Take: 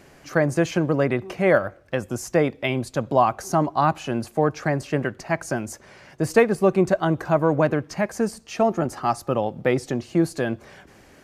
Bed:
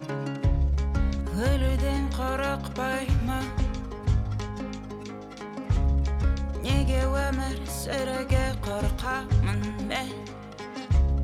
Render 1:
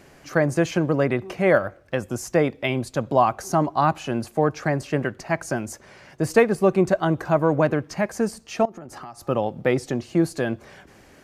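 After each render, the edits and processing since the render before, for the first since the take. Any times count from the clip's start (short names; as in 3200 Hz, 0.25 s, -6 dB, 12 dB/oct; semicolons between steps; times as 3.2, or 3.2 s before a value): 8.65–9.28 compressor 16:1, threshold -34 dBFS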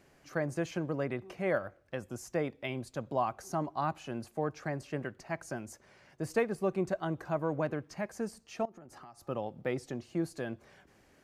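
gain -13 dB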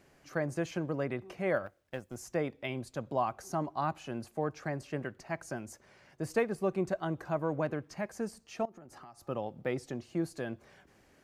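1.66–2.17 G.711 law mismatch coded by A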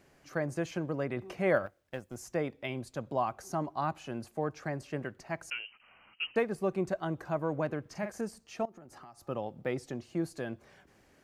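1.17–1.66 gain +3.5 dB; 5.5–6.36 inverted band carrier 3000 Hz; 7.81–8.21 doubler 44 ms -7 dB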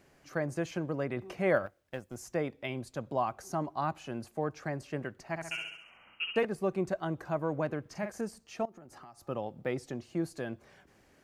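5.29–6.45 flutter echo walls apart 11.5 m, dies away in 0.73 s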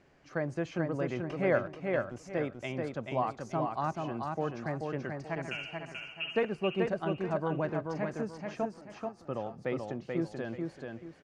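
air absorption 110 m; on a send: feedback echo 0.434 s, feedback 30%, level -4 dB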